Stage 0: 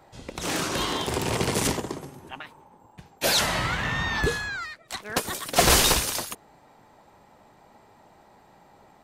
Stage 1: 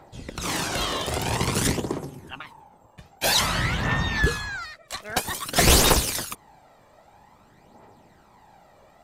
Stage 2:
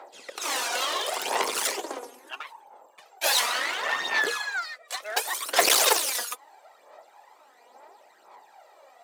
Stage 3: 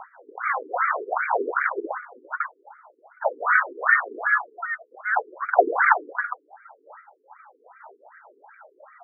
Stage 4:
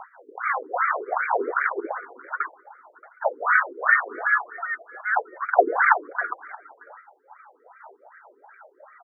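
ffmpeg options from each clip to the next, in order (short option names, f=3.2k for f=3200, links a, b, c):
-af "aphaser=in_gain=1:out_gain=1:delay=1.8:decay=0.49:speed=0.51:type=triangular"
-af "aeval=exprs='clip(val(0),-1,0.0376)':c=same,highpass=f=440:w=0.5412,highpass=f=440:w=1.3066,aphaser=in_gain=1:out_gain=1:delay=4.2:decay=0.53:speed=0.72:type=sinusoidal"
-af "equalizer=f=1.5k:t=o:w=0.45:g=9,afftfilt=real='re*between(b*sr/1024,320*pow(1700/320,0.5+0.5*sin(2*PI*2.6*pts/sr))/1.41,320*pow(1700/320,0.5+0.5*sin(2*PI*2.6*pts/sr))*1.41)':imag='im*between(b*sr/1024,320*pow(1700/320,0.5+0.5*sin(2*PI*2.6*pts/sr))/1.41,320*pow(1700/320,0.5+0.5*sin(2*PI*2.6*pts/sr))*1.41)':win_size=1024:overlap=0.75,volume=8dB"
-af "aecho=1:1:627:0.0708"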